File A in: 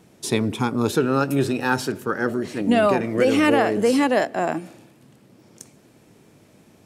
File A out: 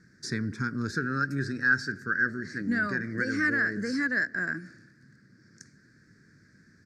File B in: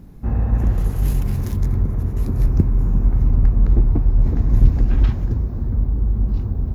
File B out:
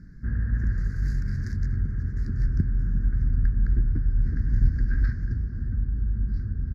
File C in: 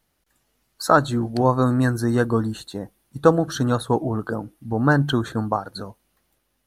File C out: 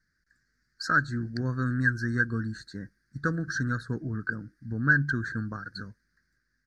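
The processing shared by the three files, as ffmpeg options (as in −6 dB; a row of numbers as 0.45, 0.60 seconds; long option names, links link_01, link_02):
-filter_complex "[0:a]firequalizer=gain_entry='entry(170,0);entry(810,-27);entry(1600,14);entry(2900,-28);entry(4600,3);entry(11000,-22)':delay=0.05:min_phase=1,asplit=2[link_01][link_02];[link_02]acompressor=threshold=-28dB:ratio=6,volume=-3dB[link_03];[link_01][link_03]amix=inputs=2:normalize=0,volume=-8.5dB"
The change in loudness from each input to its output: −7.5, −7.5, −7.5 LU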